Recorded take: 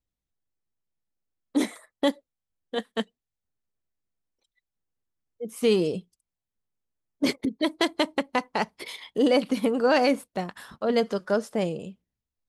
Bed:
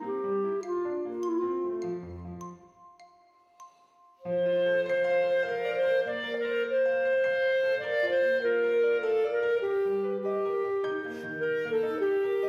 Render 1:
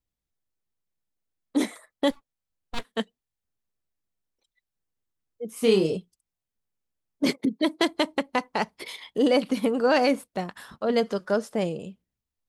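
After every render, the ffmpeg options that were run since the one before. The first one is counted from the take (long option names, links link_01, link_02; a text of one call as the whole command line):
ffmpeg -i in.wav -filter_complex "[0:a]asplit=3[link_01][link_02][link_03];[link_01]afade=type=out:start_time=2.1:duration=0.02[link_04];[link_02]aeval=exprs='abs(val(0))':channel_layout=same,afade=type=in:start_time=2.1:duration=0.02,afade=type=out:start_time=2.83:duration=0.02[link_05];[link_03]afade=type=in:start_time=2.83:duration=0.02[link_06];[link_04][link_05][link_06]amix=inputs=3:normalize=0,asettb=1/sr,asplit=3[link_07][link_08][link_09];[link_07]atrim=end=5.534[link_10];[link_08]atrim=start=5.53:end=5.97,asetpts=PTS-STARTPTS,afade=type=in:duration=0.004:curve=qsin,afade=type=out:start_time=0.436:duration=0.004:curve=qsin,asplit=2[link_11][link_12];[link_12]adelay=31,volume=-4.5dB[link_13];[link_11][link_13]amix=inputs=2:normalize=0,atrim=end_sample=19404[link_14];[link_09]atrim=start=5.966[link_15];[link_10][link_14]acrossfade=duration=0.004:curve1=hsin:curve2=qsin[link_16];[link_16][link_15]acrossfade=duration=0.004:curve1=qsin:curve2=hsin,asettb=1/sr,asplit=3[link_17][link_18][link_19];[link_17]atrim=end=7.264[link_20];[link_18]atrim=start=7.26:end=7.89,asetpts=PTS-STARTPTS,afade=type=in:duration=0.004:curve=qsin,afade=type=out:start_time=0.626:duration=0.004:curve=qsin,highpass=frequency=160:width_type=q:width=1.6[link_21];[link_19]atrim=start=7.886[link_22];[link_20][link_21]acrossfade=duration=0.004:curve1=hsin:curve2=qsin[link_23];[link_23][link_22]acrossfade=duration=0.004:curve1=qsin:curve2=hsin" out.wav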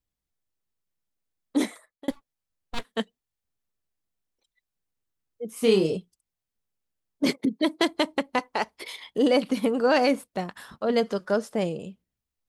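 ffmpeg -i in.wav -filter_complex "[0:a]asettb=1/sr,asplit=3[link_01][link_02][link_03];[link_01]atrim=end=8.394[link_04];[link_02]atrim=start=8.39:end=8.97,asetpts=PTS-STARTPTS,afade=type=in:duration=0.004:curve=qsin,afade=type=out:start_time=0.576:duration=0.004:curve=qsin,equalizer=frequency=170:width=1.5:gain=-10.5[link_05];[link_03]atrim=start=8.966[link_06];[link_04][link_05]acrossfade=duration=0.004:curve1=hsin:curve2=qsin[link_07];[link_07][link_06]acrossfade=duration=0.004:curve1=qsin:curve2=hsin,asplit=2[link_08][link_09];[link_08]atrim=end=2.08,asetpts=PTS-STARTPTS,afade=type=out:start_time=1.66:duration=0.42[link_10];[link_09]atrim=start=2.08,asetpts=PTS-STARTPTS,afade=type=in:duration=0.004:curve=hsin[link_11];[link_10][link_11]concat=n=2:v=0:a=1" out.wav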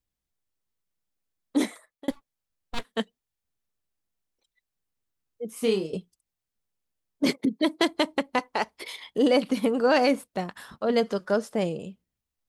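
ffmpeg -i in.wav -filter_complex "[0:a]asplit=2[link_01][link_02];[link_01]atrim=end=5.93,asetpts=PTS-STARTPTS,afade=type=out:start_time=5.52:duration=0.41:silence=0.177828[link_03];[link_02]atrim=start=5.93,asetpts=PTS-STARTPTS,afade=type=in:duration=0.004:curve=hsin:silence=0.177828[link_04];[link_03][link_04]concat=n=2:v=0:a=1" out.wav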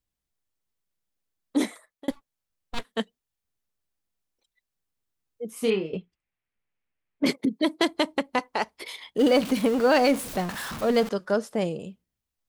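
ffmpeg -i in.wav -filter_complex "[0:a]asettb=1/sr,asplit=3[link_01][link_02][link_03];[link_01]atrim=end=5.704[link_04];[link_02]atrim=start=5.7:end=7.26,asetpts=PTS-STARTPTS,afade=type=in:duration=0.004:curve=qsin,afade=type=out:start_time=1.556:duration=0.004:curve=qsin,lowpass=frequency=2300:width_type=q:width=2.5[link_05];[link_03]atrim=start=7.256[link_06];[link_04][link_05]acrossfade=duration=0.004:curve1=hsin:curve2=qsin[link_07];[link_07][link_06]acrossfade=duration=0.004:curve1=qsin:curve2=hsin,asettb=1/sr,asplit=3[link_08][link_09][link_10];[link_08]atrim=end=9.194[link_11];[link_09]atrim=start=9.19:end=11.09,asetpts=PTS-STARTPTS,afade=type=in:duration=0.004:curve=qsin,afade=type=out:start_time=1.896:duration=0.004:curve=qsin,aeval=exprs='val(0)+0.5*0.0299*sgn(val(0))':channel_layout=same[link_12];[link_10]atrim=start=11.086[link_13];[link_11][link_12]acrossfade=duration=0.004:curve1=hsin:curve2=qsin[link_14];[link_14][link_13]acrossfade=duration=0.004:curve1=qsin:curve2=hsin" out.wav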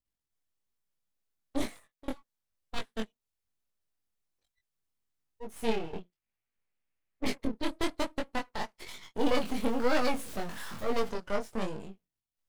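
ffmpeg -i in.wav -af "aeval=exprs='max(val(0),0)':channel_layout=same,flanger=delay=19.5:depth=5:speed=1.1" out.wav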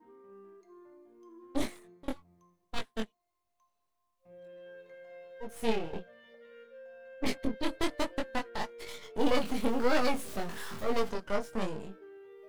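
ffmpeg -i in.wav -i bed.wav -filter_complex "[1:a]volume=-24dB[link_01];[0:a][link_01]amix=inputs=2:normalize=0" out.wav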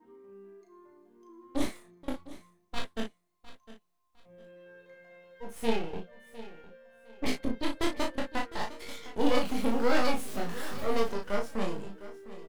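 ffmpeg -i in.wav -filter_complex "[0:a]asplit=2[link_01][link_02];[link_02]adelay=35,volume=-4.5dB[link_03];[link_01][link_03]amix=inputs=2:normalize=0,aecho=1:1:706|1412:0.15|0.0374" out.wav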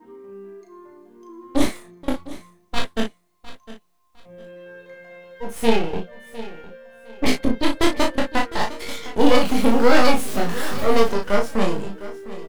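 ffmpeg -i in.wav -af "volume=11.5dB,alimiter=limit=-1dB:level=0:latency=1" out.wav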